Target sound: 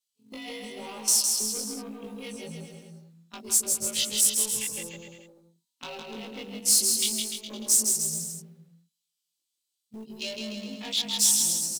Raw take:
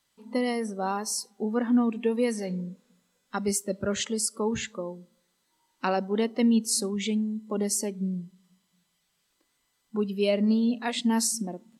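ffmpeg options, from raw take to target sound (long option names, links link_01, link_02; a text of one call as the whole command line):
ffmpeg -i in.wav -af "afftfilt=real='re':imag='-im':win_size=2048:overlap=0.75,afwtdn=0.00794,agate=range=-11dB:threshold=-44dB:ratio=16:detection=peak,acompressor=threshold=-45dB:ratio=2,asoftclip=type=tanh:threshold=-36.5dB,aexciter=amount=11.9:drive=1.1:freq=2500,acrusher=bits=6:mode=log:mix=0:aa=0.000001,aecho=1:1:160|296|411.6|509.9|593.4:0.631|0.398|0.251|0.158|0.1,volume=1.5dB" out.wav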